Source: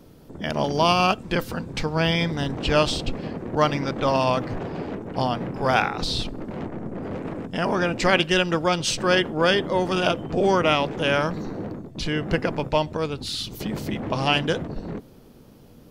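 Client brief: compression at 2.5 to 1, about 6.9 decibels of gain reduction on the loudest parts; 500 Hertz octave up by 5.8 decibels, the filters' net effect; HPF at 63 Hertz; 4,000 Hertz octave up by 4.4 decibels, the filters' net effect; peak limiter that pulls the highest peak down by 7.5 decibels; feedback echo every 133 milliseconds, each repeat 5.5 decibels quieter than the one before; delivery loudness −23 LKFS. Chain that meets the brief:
high-pass filter 63 Hz
parametric band 500 Hz +7 dB
parametric band 4,000 Hz +6 dB
downward compressor 2.5 to 1, threshold −21 dBFS
brickwall limiter −15.5 dBFS
repeating echo 133 ms, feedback 53%, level −5.5 dB
level +2 dB

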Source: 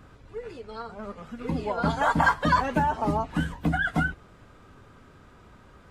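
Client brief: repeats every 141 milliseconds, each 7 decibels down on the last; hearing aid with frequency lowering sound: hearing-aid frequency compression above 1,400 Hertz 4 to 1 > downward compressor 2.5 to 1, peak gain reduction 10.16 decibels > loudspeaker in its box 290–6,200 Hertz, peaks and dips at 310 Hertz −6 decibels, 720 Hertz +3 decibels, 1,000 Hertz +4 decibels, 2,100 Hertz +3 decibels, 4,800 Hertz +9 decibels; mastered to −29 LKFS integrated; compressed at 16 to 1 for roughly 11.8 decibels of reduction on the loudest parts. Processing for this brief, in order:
downward compressor 16 to 1, threshold −28 dBFS
repeating echo 141 ms, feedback 45%, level −7 dB
hearing-aid frequency compression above 1,400 Hz 4 to 1
downward compressor 2.5 to 1, threshold −41 dBFS
loudspeaker in its box 290–6,200 Hz, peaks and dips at 310 Hz −6 dB, 720 Hz +3 dB, 1,000 Hz +4 dB, 2,100 Hz +3 dB, 4,800 Hz +9 dB
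level +12.5 dB

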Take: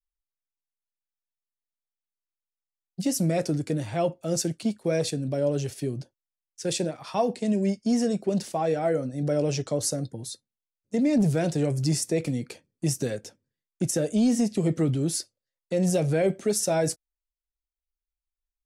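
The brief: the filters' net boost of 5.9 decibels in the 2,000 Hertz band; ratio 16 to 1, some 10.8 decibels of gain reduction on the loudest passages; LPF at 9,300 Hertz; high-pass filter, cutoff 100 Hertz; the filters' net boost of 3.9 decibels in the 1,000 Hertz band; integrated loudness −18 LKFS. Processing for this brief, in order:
high-pass filter 100 Hz
low-pass filter 9,300 Hz
parametric band 1,000 Hz +5 dB
parametric band 2,000 Hz +6 dB
downward compressor 16 to 1, threshold −28 dBFS
level +15.5 dB

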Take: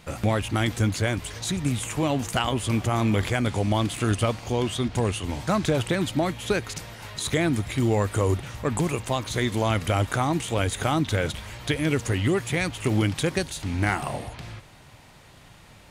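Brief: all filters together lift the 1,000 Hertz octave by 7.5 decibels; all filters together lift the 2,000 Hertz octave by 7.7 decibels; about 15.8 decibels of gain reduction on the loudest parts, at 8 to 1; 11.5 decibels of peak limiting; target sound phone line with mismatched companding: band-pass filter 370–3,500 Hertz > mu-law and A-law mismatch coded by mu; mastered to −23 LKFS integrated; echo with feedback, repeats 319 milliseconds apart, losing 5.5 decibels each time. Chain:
parametric band 1,000 Hz +8 dB
parametric band 2,000 Hz +7.5 dB
downward compressor 8 to 1, threshold −31 dBFS
brickwall limiter −27 dBFS
band-pass filter 370–3,500 Hz
repeating echo 319 ms, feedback 53%, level −5.5 dB
mu-law and A-law mismatch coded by mu
level +13 dB

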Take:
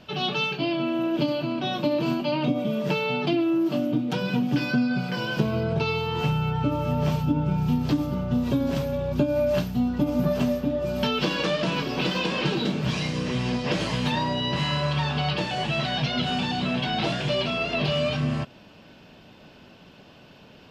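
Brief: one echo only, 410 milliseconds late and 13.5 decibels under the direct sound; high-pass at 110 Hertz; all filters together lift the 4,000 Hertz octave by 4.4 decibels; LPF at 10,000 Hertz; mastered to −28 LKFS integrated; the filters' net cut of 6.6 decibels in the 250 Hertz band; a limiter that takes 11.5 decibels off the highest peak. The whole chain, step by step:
high-pass filter 110 Hz
low-pass filter 10,000 Hz
parametric band 250 Hz −8.5 dB
parametric band 4,000 Hz +6 dB
brickwall limiter −23 dBFS
single-tap delay 410 ms −13.5 dB
level +2.5 dB

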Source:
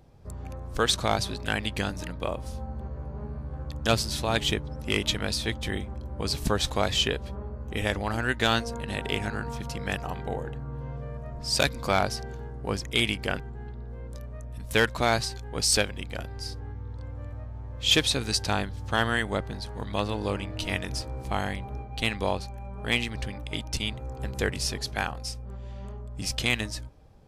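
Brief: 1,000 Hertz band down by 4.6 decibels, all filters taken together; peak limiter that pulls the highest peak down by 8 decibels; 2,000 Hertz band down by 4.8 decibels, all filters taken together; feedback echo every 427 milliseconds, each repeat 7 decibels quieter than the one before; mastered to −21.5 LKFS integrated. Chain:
parametric band 1,000 Hz −5.5 dB
parametric band 2,000 Hz −4.5 dB
brickwall limiter −19.5 dBFS
repeating echo 427 ms, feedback 45%, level −7 dB
level +11.5 dB

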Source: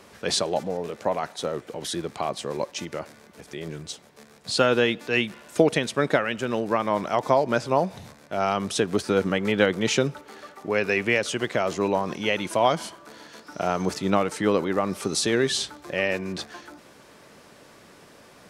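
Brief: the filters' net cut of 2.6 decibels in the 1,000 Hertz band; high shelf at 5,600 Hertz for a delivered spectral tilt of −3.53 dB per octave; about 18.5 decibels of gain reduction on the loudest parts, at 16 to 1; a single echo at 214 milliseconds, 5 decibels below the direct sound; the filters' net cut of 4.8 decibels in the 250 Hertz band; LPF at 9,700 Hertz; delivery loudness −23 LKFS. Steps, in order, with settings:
low-pass filter 9,700 Hz
parametric band 250 Hz −6.5 dB
parametric band 1,000 Hz −3 dB
high-shelf EQ 5,600 Hz −3 dB
downward compressor 16 to 1, threshold −35 dBFS
single-tap delay 214 ms −5 dB
level +16.5 dB

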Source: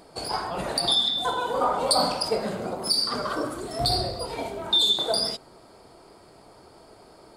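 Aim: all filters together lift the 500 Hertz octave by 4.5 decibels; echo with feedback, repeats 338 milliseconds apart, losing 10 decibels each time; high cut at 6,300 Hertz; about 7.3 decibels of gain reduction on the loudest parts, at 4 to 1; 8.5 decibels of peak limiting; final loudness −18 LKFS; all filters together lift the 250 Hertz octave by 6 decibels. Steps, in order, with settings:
low-pass filter 6,300 Hz
parametric band 250 Hz +6.5 dB
parametric band 500 Hz +4 dB
downward compressor 4 to 1, threshold −24 dBFS
brickwall limiter −21.5 dBFS
repeating echo 338 ms, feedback 32%, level −10 dB
level +11.5 dB

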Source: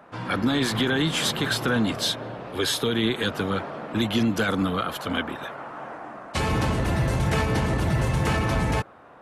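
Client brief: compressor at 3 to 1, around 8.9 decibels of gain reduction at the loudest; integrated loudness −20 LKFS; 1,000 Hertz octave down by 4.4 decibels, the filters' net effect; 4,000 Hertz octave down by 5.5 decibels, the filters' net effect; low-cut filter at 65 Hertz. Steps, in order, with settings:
high-pass filter 65 Hz
parametric band 1,000 Hz −5.5 dB
parametric band 4,000 Hz −6.5 dB
downward compressor 3 to 1, threshold −32 dBFS
level +14 dB

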